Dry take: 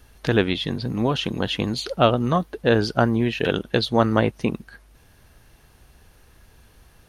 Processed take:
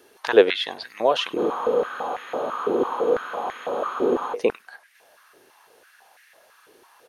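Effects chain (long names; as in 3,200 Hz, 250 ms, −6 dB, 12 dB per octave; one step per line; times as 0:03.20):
far-end echo of a speakerphone 100 ms, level −19 dB
frozen spectrum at 0:01.40, 2.92 s
high-pass on a step sequencer 6 Hz 380–1,900 Hz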